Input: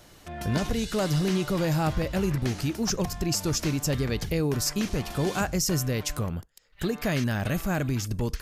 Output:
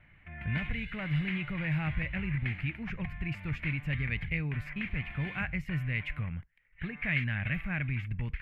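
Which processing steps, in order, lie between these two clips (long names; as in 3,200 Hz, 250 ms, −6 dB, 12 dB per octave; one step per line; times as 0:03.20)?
drawn EQ curve 150 Hz 0 dB, 400 Hz −17 dB, 1,300 Hz −6 dB, 2,200 Hz +14 dB, 5,700 Hz −25 dB, 12,000 Hz +1 dB
low-pass that shuts in the quiet parts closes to 1,600 Hz, open at −12.5 dBFS
level −4 dB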